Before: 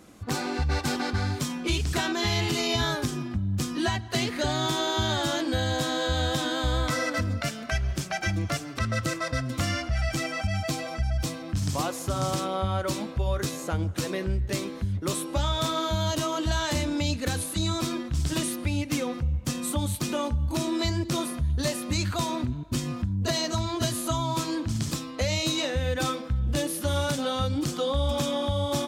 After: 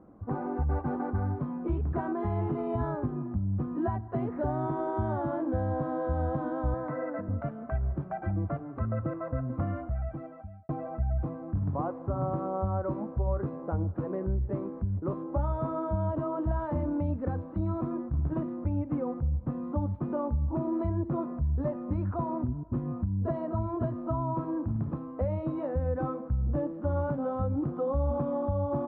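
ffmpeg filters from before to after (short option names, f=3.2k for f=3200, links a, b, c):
-filter_complex "[0:a]asettb=1/sr,asplit=3[a][b][c];[a]atrim=end=6.744[d];[b]atrim=start=6.74:end=7.29,asetpts=PTS-STARTPTS,afade=t=in:d=0.004:c=qsin,afade=t=out:st=0.546:d=0.004:c=qsin,highpass=f=150:w=0.5412,highpass=f=150:w=1.3066,equalizer=f=230:t=q:w=4:g=-7,equalizer=f=1.2k:t=q:w=4:g=-5,equalizer=f=1.8k:t=q:w=4:g=7,equalizer=f=3.1k:t=q:w=4:g=-7,lowpass=f=9.3k:w=0.5412,lowpass=f=9.3k:w=1.3066[e];[c]atrim=start=7.286[f];[d][e]acrossfade=d=0.004:c1=hsin:c2=qsin[g];[g][f]acrossfade=d=0.004:c1=qsin:c2=hsin,asplit=2[h][i];[h]atrim=end=10.69,asetpts=PTS-STARTPTS,afade=t=out:st=9.66:d=1.03[j];[i]atrim=start=10.69,asetpts=PTS-STARTPTS,afade=t=in:d=0.004:c=hsin[k];[j][k]concat=n=2:v=0:a=1,lowpass=f=1.1k:w=0.5412,lowpass=f=1.1k:w=1.3066,volume=-2dB"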